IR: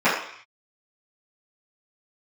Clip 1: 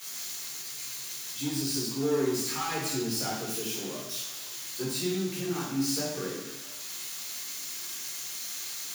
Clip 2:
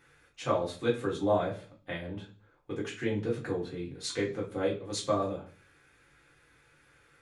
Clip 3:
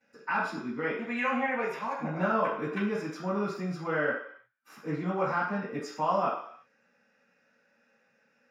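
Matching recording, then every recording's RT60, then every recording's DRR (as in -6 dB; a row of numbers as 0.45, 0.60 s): 3; 0.85, 0.40, 0.60 s; -6.5, -5.0, -14.0 dB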